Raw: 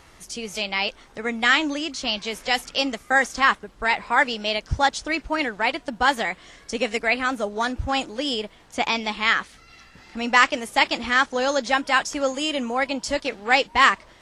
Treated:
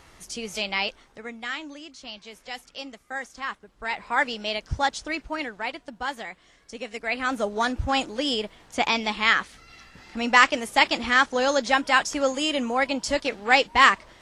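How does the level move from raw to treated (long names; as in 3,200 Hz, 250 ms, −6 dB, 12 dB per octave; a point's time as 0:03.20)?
0:00.79 −1.5 dB
0:01.47 −14 dB
0:03.46 −14 dB
0:04.19 −4 dB
0:05.03 −4 dB
0:06.09 −11 dB
0:06.90 −11 dB
0:07.37 0 dB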